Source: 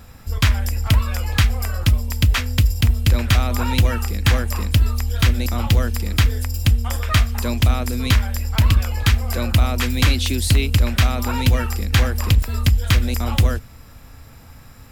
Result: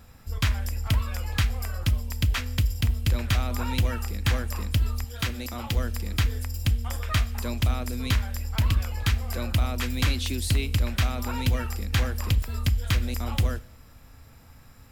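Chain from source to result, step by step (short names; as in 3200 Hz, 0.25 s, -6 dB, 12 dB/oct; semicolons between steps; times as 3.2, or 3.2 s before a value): 5.04–5.76 HPF 160 Hz 6 dB/oct; Schroeder reverb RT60 0.79 s, combs from 28 ms, DRR 19 dB; gain -8 dB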